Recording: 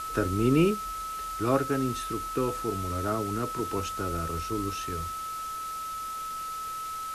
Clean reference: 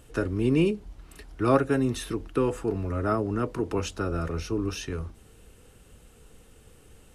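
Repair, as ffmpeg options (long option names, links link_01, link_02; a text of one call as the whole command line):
ffmpeg -i in.wav -af "bandreject=frequency=1300:width=30,afwtdn=0.0063,asetnsamples=nb_out_samples=441:pad=0,asendcmd='0.74 volume volume 4dB',volume=0dB" out.wav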